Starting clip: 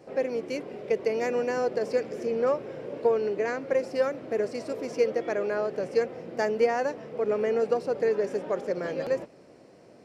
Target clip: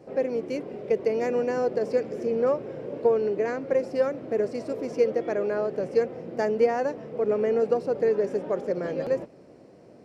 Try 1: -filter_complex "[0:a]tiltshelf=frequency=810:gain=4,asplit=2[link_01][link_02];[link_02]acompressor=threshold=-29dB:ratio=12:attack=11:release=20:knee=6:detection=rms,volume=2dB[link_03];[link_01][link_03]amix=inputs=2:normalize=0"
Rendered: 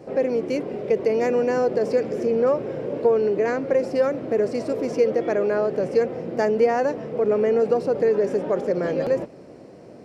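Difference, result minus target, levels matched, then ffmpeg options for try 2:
downward compressor: peak gain reduction +13 dB
-af "tiltshelf=frequency=810:gain=4"

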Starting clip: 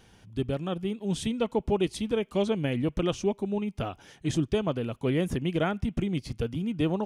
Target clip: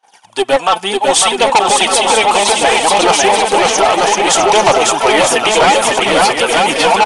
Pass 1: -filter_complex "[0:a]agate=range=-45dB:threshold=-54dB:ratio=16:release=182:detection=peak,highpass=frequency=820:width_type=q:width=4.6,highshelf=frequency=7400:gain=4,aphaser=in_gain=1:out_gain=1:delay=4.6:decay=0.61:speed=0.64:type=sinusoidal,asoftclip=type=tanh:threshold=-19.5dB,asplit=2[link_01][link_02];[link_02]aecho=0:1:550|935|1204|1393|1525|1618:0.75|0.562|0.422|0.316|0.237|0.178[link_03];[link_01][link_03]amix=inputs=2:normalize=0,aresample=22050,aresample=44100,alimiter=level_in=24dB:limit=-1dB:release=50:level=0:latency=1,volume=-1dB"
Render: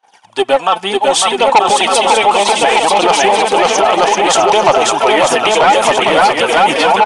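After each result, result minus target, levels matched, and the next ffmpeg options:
8,000 Hz band −4.0 dB; soft clipping: distortion −5 dB
-filter_complex "[0:a]agate=range=-45dB:threshold=-54dB:ratio=16:release=182:detection=peak,highpass=frequency=820:width_type=q:width=4.6,highshelf=frequency=7400:gain=14.5,aphaser=in_gain=1:out_gain=1:delay=4.6:decay=0.61:speed=0.64:type=sinusoidal,asoftclip=type=tanh:threshold=-19.5dB,asplit=2[link_01][link_02];[link_02]aecho=0:1:550|935|1204|1393|1525|1618:0.75|0.562|0.422|0.316|0.237|0.178[link_03];[link_01][link_03]amix=inputs=2:normalize=0,aresample=22050,aresample=44100,alimiter=level_in=24dB:limit=-1dB:release=50:level=0:latency=1,volume=-1dB"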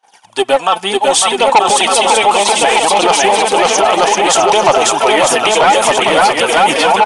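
soft clipping: distortion −5 dB
-filter_complex "[0:a]agate=range=-45dB:threshold=-54dB:ratio=16:release=182:detection=peak,highpass=frequency=820:width_type=q:width=4.6,highshelf=frequency=7400:gain=14.5,aphaser=in_gain=1:out_gain=1:delay=4.6:decay=0.61:speed=0.64:type=sinusoidal,asoftclip=type=tanh:threshold=-28dB,asplit=2[link_01][link_02];[link_02]aecho=0:1:550|935|1204|1393|1525|1618:0.75|0.562|0.422|0.316|0.237|0.178[link_03];[link_01][link_03]amix=inputs=2:normalize=0,aresample=22050,aresample=44100,alimiter=level_in=24dB:limit=-1dB:release=50:level=0:latency=1,volume=-1dB"

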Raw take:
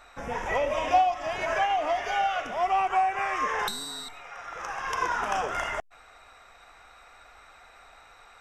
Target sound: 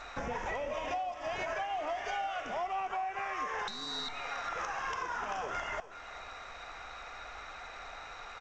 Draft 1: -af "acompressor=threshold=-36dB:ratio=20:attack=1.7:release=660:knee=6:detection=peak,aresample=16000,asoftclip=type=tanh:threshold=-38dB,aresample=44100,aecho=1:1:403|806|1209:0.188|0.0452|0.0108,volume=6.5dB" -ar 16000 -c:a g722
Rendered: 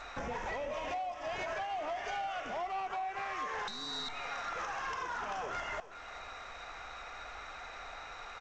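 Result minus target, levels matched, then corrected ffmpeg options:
soft clipping: distortion +15 dB
-af "acompressor=threshold=-36dB:ratio=20:attack=1.7:release=660:knee=6:detection=peak,aresample=16000,asoftclip=type=tanh:threshold=-28.5dB,aresample=44100,aecho=1:1:403|806|1209:0.188|0.0452|0.0108,volume=6.5dB" -ar 16000 -c:a g722

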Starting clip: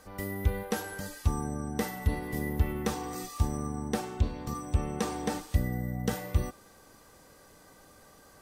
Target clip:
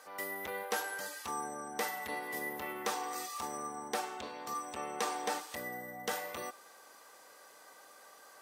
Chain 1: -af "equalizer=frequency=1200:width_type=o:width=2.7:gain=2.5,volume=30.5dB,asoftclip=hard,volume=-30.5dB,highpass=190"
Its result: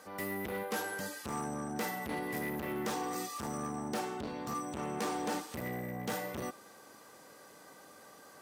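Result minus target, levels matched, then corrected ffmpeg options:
250 Hz band +8.5 dB; gain into a clipping stage and back: distortion +9 dB
-af "equalizer=frequency=1200:width_type=o:width=2.7:gain=2.5,volume=20.5dB,asoftclip=hard,volume=-20.5dB,highpass=570"

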